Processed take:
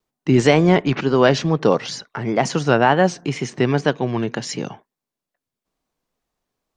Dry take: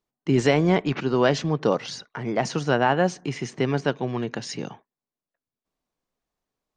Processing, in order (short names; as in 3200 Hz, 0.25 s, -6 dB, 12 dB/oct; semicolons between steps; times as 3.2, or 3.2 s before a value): wow and flutter 70 cents; gain +5.5 dB